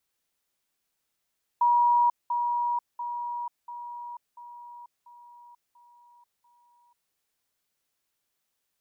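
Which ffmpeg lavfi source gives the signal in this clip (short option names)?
-f lavfi -i "aevalsrc='pow(10,(-18-6*floor(t/0.69))/20)*sin(2*PI*959*t)*clip(min(mod(t,0.69),0.49-mod(t,0.69))/0.005,0,1)':d=5.52:s=44100"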